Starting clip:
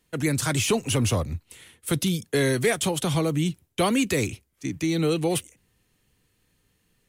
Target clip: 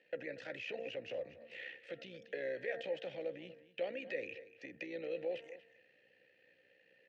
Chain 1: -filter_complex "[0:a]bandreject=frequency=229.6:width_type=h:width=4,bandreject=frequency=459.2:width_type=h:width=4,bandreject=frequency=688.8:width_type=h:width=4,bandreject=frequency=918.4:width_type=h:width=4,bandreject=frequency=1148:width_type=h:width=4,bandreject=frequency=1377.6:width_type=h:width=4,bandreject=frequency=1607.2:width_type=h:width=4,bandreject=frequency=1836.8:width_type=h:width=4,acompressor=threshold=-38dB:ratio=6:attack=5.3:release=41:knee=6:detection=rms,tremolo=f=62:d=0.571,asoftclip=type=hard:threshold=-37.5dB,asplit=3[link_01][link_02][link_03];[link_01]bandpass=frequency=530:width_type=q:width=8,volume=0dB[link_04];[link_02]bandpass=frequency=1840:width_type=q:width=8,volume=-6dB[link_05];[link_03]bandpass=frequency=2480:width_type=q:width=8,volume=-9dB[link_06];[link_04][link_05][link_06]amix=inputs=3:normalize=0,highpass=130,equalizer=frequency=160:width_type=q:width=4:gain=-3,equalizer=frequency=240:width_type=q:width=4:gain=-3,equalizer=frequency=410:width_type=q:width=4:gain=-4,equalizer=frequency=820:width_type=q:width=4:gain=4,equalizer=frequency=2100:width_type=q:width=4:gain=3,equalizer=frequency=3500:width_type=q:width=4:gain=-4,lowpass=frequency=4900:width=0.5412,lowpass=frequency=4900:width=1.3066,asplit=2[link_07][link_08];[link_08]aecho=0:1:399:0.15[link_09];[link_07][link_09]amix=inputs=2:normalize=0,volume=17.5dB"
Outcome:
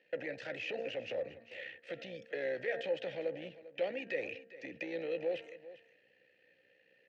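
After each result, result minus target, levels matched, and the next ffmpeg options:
echo 162 ms late; downward compressor: peak gain reduction −5 dB
-filter_complex "[0:a]bandreject=frequency=229.6:width_type=h:width=4,bandreject=frequency=459.2:width_type=h:width=4,bandreject=frequency=688.8:width_type=h:width=4,bandreject=frequency=918.4:width_type=h:width=4,bandreject=frequency=1148:width_type=h:width=4,bandreject=frequency=1377.6:width_type=h:width=4,bandreject=frequency=1607.2:width_type=h:width=4,bandreject=frequency=1836.8:width_type=h:width=4,acompressor=threshold=-38dB:ratio=6:attack=5.3:release=41:knee=6:detection=rms,tremolo=f=62:d=0.571,asoftclip=type=hard:threshold=-37.5dB,asplit=3[link_01][link_02][link_03];[link_01]bandpass=frequency=530:width_type=q:width=8,volume=0dB[link_04];[link_02]bandpass=frequency=1840:width_type=q:width=8,volume=-6dB[link_05];[link_03]bandpass=frequency=2480:width_type=q:width=8,volume=-9dB[link_06];[link_04][link_05][link_06]amix=inputs=3:normalize=0,highpass=130,equalizer=frequency=160:width_type=q:width=4:gain=-3,equalizer=frequency=240:width_type=q:width=4:gain=-3,equalizer=frequency=410:width_type=q:width=4:gain=-4,equalizer=frequency=820:width_type=q:width=4:gain=4,equalizer=frequency=2100:width_type=q:width=4:gain=3,equalizer=frequency=3500:width_type=q:width=4:gain=-4,lowpass=frequency=4900:width=0.5412,lowpass=frequency=4900:width=1.3066,asplit=2[link_07][link_08];[link_08]aecho=0:1:237:0.15[link_09];[link_07][link_09]amix=inputs=2:normalize=0,volume=17.5dB"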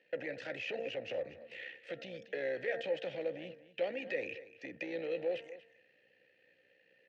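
downward compressor: peak gain reduction −5 dB
-filter_complex "[0:a]bandreject=frequency=229.6:width_type=h:width=4,bandreject=frequency=459.2:width_type=h:width=4,bandreject=frequency=688.8:width_type=h:width=4,bandreject=frequency=918.4:width_type=h:width=4,bandreject=frequency=1148:width_type=h:width=4,bandreject=frequency=1377.6:width_type=h:width=4,bandreject=frequency=1607.2:width_type=h:width=4,bandreject=frequency=1836.8:width_type=h:width=4,acompressor=threshold=-44dB:ratio=6:attack=5.3:release=41:knee=6:detection=rms,tremolo=f=62:d=0.571,asoftclip=type=hard:threshold=-37.5dB,asplit=3[link_01][link_02][link_03];[link_01]bandpass=frequency=530:width_type=q:width=8,volume=0dB[link_04];[link_02]bandpass=frequency=1840:width_type=q:width=8,volume=-6dB[link_05];[link_03]bandpass=frequency=2480:width_type=q:width=8,volume=-9dB[link_06];[link_04][link_05][link_06]amix=inputs=3:normalize=0,highpass=130,equalizer=frequency=160:width_type=q:width=4:gain=-3,equalizer=frequency=240:width_type=q:width=4:gain=-3,equalizer=frequency=410:width_type=q:width=4:gain=-4,equalizer=frequency=820:width_type=q:width=4:gain=4,equalizer=frequency=2100:width_type=q:width=4:gain=3,equalizer=frequency=3500:width_type=q:width=4:gain=-4,lowpass=frequency=4900:width=0.5412,lowpass=frequency=4900:width=1.3066,asplit=2[link_07][link_08];[link_08]aecho=0:1:237:0.15[link_09];[link_07][link_09]amix=inputs=2:normalize=0,volume=17.5dB"

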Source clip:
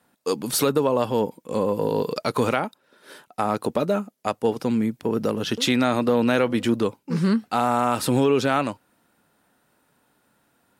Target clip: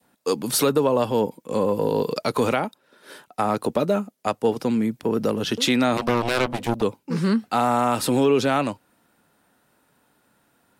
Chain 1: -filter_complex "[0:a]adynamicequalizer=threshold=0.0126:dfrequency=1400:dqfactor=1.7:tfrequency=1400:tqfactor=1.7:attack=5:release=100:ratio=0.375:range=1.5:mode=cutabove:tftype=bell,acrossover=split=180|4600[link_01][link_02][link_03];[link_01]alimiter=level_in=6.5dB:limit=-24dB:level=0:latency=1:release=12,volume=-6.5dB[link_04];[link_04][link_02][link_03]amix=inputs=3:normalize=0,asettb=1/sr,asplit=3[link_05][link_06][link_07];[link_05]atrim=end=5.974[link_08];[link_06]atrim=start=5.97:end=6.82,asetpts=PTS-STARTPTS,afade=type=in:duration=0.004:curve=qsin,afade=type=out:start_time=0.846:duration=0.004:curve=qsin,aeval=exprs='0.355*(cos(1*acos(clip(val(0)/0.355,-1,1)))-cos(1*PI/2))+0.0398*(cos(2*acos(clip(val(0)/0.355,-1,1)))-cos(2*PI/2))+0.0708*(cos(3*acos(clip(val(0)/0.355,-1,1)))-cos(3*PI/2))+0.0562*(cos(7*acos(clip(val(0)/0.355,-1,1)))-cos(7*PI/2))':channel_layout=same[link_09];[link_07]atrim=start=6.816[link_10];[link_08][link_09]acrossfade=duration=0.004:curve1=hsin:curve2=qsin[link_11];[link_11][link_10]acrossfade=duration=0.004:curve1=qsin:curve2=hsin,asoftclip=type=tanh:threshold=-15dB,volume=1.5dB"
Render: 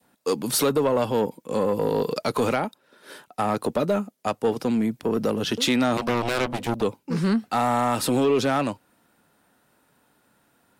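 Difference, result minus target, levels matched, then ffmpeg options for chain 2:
soft clipping: distortion +19 dB
-filter_complex "[0:a]adynamicequalizer=threshold=0.0126:dfrequency=1400:dqfactor=1.7:tfrequency=1400:tqfactor=1.7:attack=5:release=100:ratio=0.375:range=1.5:mode=cutabove:tftype=bell,acrossover=split=180|4600[link_01][link_02][link_03];[link_01]alimiter=level_in=6.5dB:limit=-24dB:level=0:latency=1:release=12,volume=-6.5dB[link_04];[link_04][link_02][link_03]amix=inputs=3:normalize=0,asettb=1/sr,asplit=3[link_05][link_06][link_07];[link_05]atrim=end=5.974[link_08];[link_06]atrim=start=5.97:end=6.82,asetpts=PTS-STARTPTS,afade=type=in:duration=0.004:curve=qsin,afade=type=out:start_time=0.846:duration=0.004:curve=qsin,aeval=exprs='0.355*(cos(1*acos(clip(val(0)/0.355,-1,1)))-cos(1*PI/2))+0.0398*(cos(2*acos(clip(val(0)/0.355,-1,1)))-cos(2*PI/2))+0.0708*(cos(3*acos(clip(val(0)/0.355,-1,1)))-cos(3*PI/2))+0.0562*(cos(7*acos(clip(val(0)/0.355,-1,1)))-cos(7*PI/2))':channel_layout=same[link_09];[link_07]atrim=start=6.816[link_10];[link_08][link_09]acrossfade=duration=0.004:curve1=hsin:curve2=qsin[link_11];[link_11][link_10]acrossfade=duration=0.004:curve1=qsin:curve2=hsin,asoftclip=type=tanh:threshold=-3.5dB,volume=1.5dB"

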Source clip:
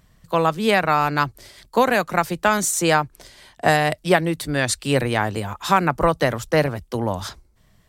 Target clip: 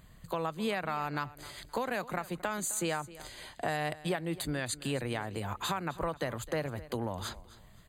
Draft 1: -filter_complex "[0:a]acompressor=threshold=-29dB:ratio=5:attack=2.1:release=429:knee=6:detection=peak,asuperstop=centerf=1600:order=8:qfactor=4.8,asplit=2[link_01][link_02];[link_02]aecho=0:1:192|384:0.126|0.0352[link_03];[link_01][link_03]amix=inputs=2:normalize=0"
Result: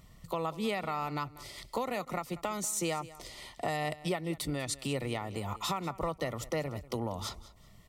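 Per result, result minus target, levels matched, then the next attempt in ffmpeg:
echo 69 ms early; 2,000 Hz band −3.0 dB
-filter_complex "[0:a]acompressor=threshold=-29dB:ratio=5:attack=2.1:release=429:knee=6:detection=peak,asuperstop=centerf=1600:order=8:qfactor=4.8,asplit=2[link_01][link_02];[link_02]aecho=0:1:261|522:0.126|0.0352[link_03];[link_01][link_03]amix=inputs=2:normalize=0"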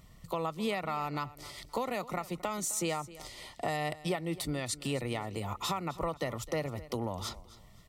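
2,000 Hz band −3.0 dB
-filter_complex "[0:a]acompressor=threshold=-29dB:ratio=5:attack=2.1:release=429:knee=6:detection=peak,asuperstop=centerf=5500:order=8:qfactor=4.8,asplit=2[link_01][link_02];[link_02]aecho=0:1:261|522:0.126|0.0352[link_03];[link_01][link_03]amix=inputs=2:normalize=0"

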